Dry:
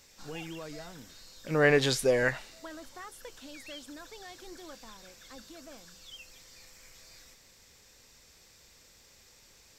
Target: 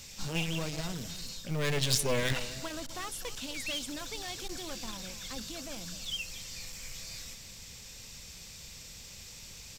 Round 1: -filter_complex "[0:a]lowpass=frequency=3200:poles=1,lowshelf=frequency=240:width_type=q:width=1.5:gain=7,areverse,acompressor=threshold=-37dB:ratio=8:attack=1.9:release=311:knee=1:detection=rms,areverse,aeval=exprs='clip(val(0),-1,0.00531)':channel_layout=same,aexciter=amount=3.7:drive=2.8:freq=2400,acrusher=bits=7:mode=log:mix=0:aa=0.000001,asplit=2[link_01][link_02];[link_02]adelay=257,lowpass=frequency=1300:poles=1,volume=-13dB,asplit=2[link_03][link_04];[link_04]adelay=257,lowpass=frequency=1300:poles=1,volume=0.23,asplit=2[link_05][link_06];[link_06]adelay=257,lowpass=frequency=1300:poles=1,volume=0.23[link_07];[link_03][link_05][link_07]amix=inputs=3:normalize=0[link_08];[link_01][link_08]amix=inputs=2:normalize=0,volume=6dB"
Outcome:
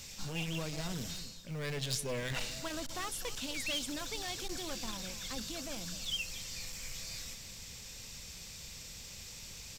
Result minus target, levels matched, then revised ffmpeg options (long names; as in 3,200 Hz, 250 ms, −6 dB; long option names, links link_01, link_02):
downward compressor: peak gain reduction +9 dB
-filter_complex "[0:a]lowpass=frequency=3200:poles=1,lowshelf=frequency=240:width_type=q:width=1.5:gain=7,areverse,acompressor=threshold=-27dB:ratio=8:attack=1.9:release=311:knee=1:detection=rms,areverse,aeval=exprs='clip(val(0),-1,0.00531)':channel_layout=same,aexciter=amount=3.7:drive=2.8:freq=2400,acrusher=bits=7:mode=log:mix=0:aa=0.000001,asplit=2[link_01][link_02];[link_02]adelay=257,lowpass=frequency=1300:poles=1,volume=-13dB,asplit=2[link_03][link_04];[link_04]adelay=257,lowpass=frequency=1300:poles=1,volume=0.23,asplit=2[link_05][link_06];[link_06]adelay=257,lowpass=frequency=1300:poles=1,volume=0.23[link_07];[link_03][link_05][link_07]amix=inputs=3:normalize=0[link_08];[link_01][link_08]amix=inputs=2:normalize=0,volume=6dB"